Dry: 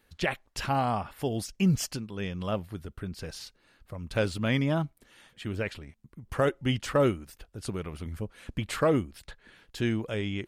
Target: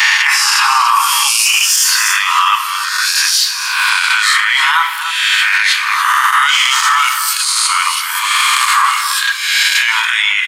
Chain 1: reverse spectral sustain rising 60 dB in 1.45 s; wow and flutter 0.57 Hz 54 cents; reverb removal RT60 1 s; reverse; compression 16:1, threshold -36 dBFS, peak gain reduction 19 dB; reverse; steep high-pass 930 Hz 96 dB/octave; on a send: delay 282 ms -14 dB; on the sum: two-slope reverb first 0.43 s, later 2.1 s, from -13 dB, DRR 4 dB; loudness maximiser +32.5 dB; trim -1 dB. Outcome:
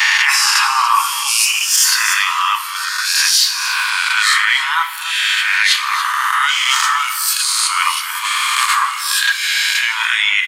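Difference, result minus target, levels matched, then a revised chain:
compression: peak gain reduction +8.5 dB
reverse spectral sustain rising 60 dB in 1.45 s; wow and flutter 0.57 Hz 54 cents; reverb removal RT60 1 s; reverse; compression 16:1, threshold -27 dBFS, peak gain reduction 10.5 dB; reverse; steep high-pass 930 Hz 96 dB/octave; on a send: delay 282 ms -14 dB; on the sum: two-slope reverb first 0.43 s, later 2.1 s, from -13 dB, DRR 4 dB; loudness maximiser +32.5 dB; trim -1 dB

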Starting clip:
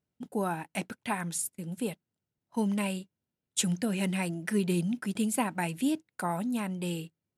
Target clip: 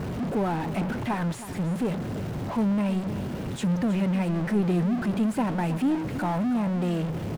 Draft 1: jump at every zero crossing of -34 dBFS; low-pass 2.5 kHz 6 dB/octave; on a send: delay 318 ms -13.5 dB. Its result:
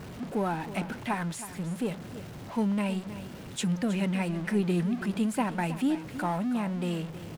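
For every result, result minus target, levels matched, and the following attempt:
jump at every zero crossing: distortion -8 dB; 2 kHz band +3.5 dB
jump at every zero crossing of -22.5 dBFS; low-pass 2.5 kHz 6 dB/octave; on a send: delay 318 ms -13.5 dB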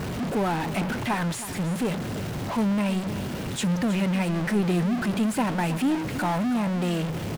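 2 kHz band +4.5 dB
jump at every zero crossing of -22.5 dBFS; low-pass 880 Hz 6 dB/octave; on a send: delay 318 ms -13.5 dB

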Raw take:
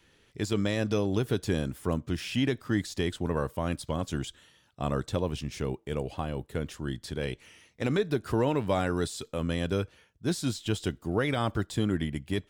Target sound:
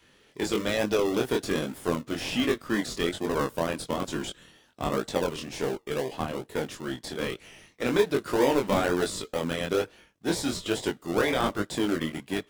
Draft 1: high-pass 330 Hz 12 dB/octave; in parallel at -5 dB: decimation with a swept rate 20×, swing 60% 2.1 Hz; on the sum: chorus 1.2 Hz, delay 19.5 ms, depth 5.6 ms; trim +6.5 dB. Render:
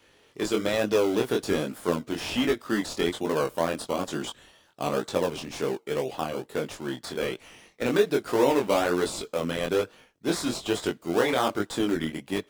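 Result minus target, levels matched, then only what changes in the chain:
decimation with a swept rate: distortion -11 dB
change: decimation with a swept rate 44×, swing 60% 2.1 Hz

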